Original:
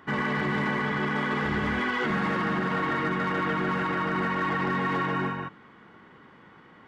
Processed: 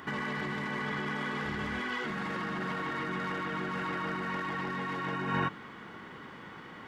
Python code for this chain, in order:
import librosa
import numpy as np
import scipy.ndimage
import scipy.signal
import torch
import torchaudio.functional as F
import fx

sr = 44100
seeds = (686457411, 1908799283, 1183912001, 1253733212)

y = fx.high_shelf(x, sr, hz=3400.0, db=8.0)
y = fx.over_compress(y, sr, threshold_db=-33.0, ratio=-1.0)
y = y * librosa.db_to_amplitude(-1.5)